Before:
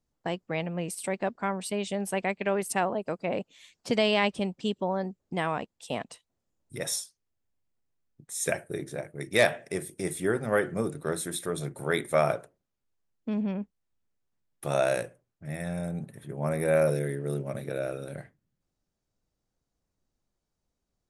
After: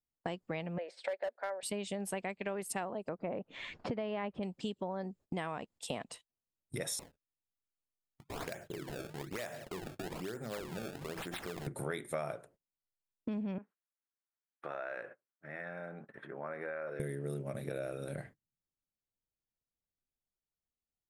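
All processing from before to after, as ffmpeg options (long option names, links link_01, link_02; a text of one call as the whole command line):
ffmpeg -i in.wav -filter_complex "[0:a]asettb=1/sr,asplit=3[link_01][link_02][link_03];[link_01]atrim=end=0.784[link_04];[link_02]atrim=start=0.78:end=1.63,asetpts=PTS-STARTPTS,afade=type=in:duration=0.004:curve=qsin,afade=type=out:start_time=0.846:duration=0.004:curve=qsin,highpass=frequency=490:width=0.5412,highpass=frequency=490:width=1.3066,equalizer=frequency=570:width_type=q:width=4:gain=9,equalizer=frequency=1100:width_type=q:width=4:gain=-9,equalizer=frequency=1700:width_type=q:width=4:gain=5,equalizer=frequency=2800:width_type=q:width=4:gain=-10,lowpass=frequency=3900:width=0.5412,lowpass=frequency=3900:width=1.3066,asoftclip=type=hard:threshold=-21dB[link_05];[link_03]atrim=start=1.626[link_06];[link_04][link_05]acrossfade=duration=0.004:curve1=hsin:curve2=qsin[link_07];[link_07][link_06]acrossfade=duration=0.004:curve1=qsin:curve2=hsin,asettb=1/sr,asplit=3[link_08][link_09][link_10];[link_08]atrim=end=3.094[link_11];[link_09]atrim=start=3.09:end=4.43,asetpts=PTS-STARTPTS,afade=type=in:duration=0.004:curve=qsin,afade=type=out:start_time=1.336:duration=0.004:curve=qsin,lowpass=1600,acompressor=mode=upward:threshold=-31dB:ratio=2.5:attack=3.2:release=140:knee=2.83:detection=peak[link_12];[link_10]atrim=start=4.426[link_13];[link_11][link_12]acrossfade=duration=0.004:curve1=hsin:curve2=qsin[link_14];[link_14][link_13]acrossfade=duration=0.004:curve1=qsin:curve2=hsin,asettb=1/sr,asplit=3[link_15][link_16][link_17];[link_15]atrim=end=6.994[link_18];[link_16]atrim=start=6.99:end=11.67,asetpts=PTS-STARTPTS,afade=type=in:duration=0.004:curve=qsin,afade=type=out:start_time=4.676:duration=0.004:curve=qsin,bandreject=frequency=50:width_type=h:width=6,bandreject=frequency=100:width_type=h:width=6,bandreject=frequency=150:width_type=h:width=6,bandreject=frequency=200:width_type=h:width=6,acompressor=threshold=-44dB:ratio=3:attack=3.2:release=140:knee=1:detection=peak,acrusher=samples=25:mix=1:aa=0.000001:lfo=1:lforange=40:lforate=1.1[link_19];[link_17]atrim=start=11.666[link_20];[link_18][link_19]acrossfade=duration=0.004:curve1=hsin:curve2=qsin[link_21];[link_21][link_20]acrossfade=duration=0.004:curve1=qsin:curve2=hsin,asettb=1/sr,asplit=3[link_22][link_23][link_24];[link_22]atrim=end=13.584[link_25];[link_23]atrim=start=13.58:end=17,asetpts=PTS-STARTPTS,afade=type=in:duration=0.004:curve=qsin,afade=type=out:start_time=3.416:duration=0.004:curve=qsin,equalizer=frequency=1500:width=1.4:gain=11,acompressor=threshold=-42dB:ratio=3:attack=3.2:release=140:knee=1:detection=peak,highpass=320,lowpass=2300[link_26];[link_24]atrim=start=16.996[link_27];[link_25][link_26]acrossfade=duration=0.004:curve1=hsin:curve2=qsin[link_28];[link_28][link_27]acrossfade=duration=0.004:curve1=qsin:curve2=hsin,bandreject=frequency=5900:width=16,agate=range=-21dB:threshold=-52dB:ratio=16:detection=peak,acompressor=threshold=-40dB:ratio=5,volume=3.5dB" out.wav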